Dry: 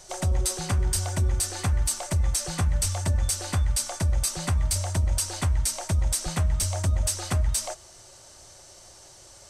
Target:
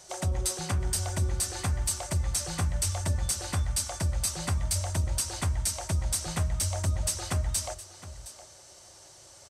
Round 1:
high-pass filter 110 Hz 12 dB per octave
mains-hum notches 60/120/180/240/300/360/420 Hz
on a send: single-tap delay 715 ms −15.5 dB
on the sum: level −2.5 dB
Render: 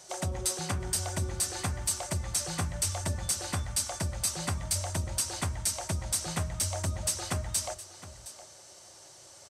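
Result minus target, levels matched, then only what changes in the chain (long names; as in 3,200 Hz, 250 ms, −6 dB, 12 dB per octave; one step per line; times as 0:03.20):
125 Hz band −3.0 dB
change: high-pass filter 55 Hz 12 dB per octave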